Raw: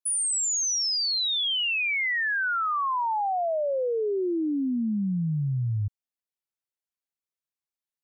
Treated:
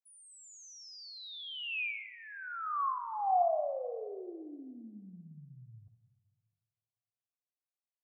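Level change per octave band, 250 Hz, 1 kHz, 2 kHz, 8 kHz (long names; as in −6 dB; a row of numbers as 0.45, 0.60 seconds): −21.0 dB, −5.5 dB, −14.5 dB, below −25 dB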